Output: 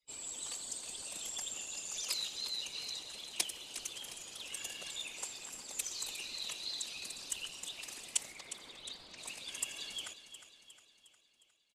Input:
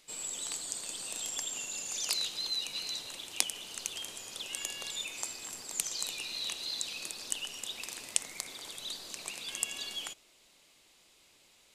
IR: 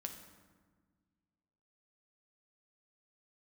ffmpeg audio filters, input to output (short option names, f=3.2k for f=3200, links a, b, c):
-filter_complex "[0:a]asettb=1/sr,asplit=3[a][b][c];[a]atrim=end=8.324[d];[b]atrim=start=8.32:end=9.18,asetpts=PTS-STARTPTS,afade=t=in:d=0.004:c=qsin,afade=t=out:st=0.856:d=0.004:c=qsin,lowpass=4k[e];[c]atrim=start=9.176[f];[d][e]acrossfade=d=0.004:c1=hsin:c2=qsin[g];[g][f]acrossfade=d=0.004:c1=qsin:c2=hsin,afftdn=nr=24:nf=-58,afftfilt=real='hypot(re,im)*cos(2*PI*random(0))':imag='hypot(re,im)*sin(2*PI*random(1))':win_size=512:overlap=0.75,aecho=1:1:358|716|1074|1432|1790|2148:0.251|0.133|0.0706|0.0374|0.0198|0.0105,volume=1.5dB"